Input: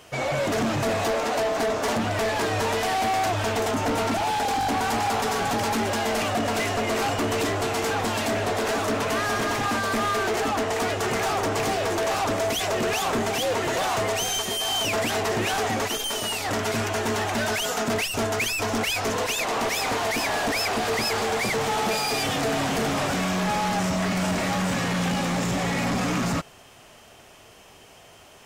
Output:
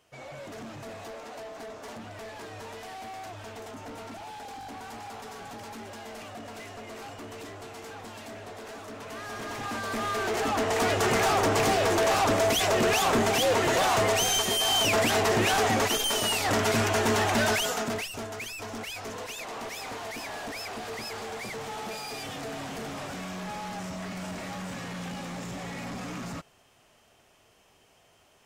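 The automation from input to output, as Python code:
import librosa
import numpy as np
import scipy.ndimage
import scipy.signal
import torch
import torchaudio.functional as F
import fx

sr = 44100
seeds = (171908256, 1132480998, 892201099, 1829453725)

y = fx.gain(x, sr, db=fx.line((8.91, -17.0), (9.74, -8.5), (10.96, 1.0), (17.49, 1.0), (18.26, -12.0)))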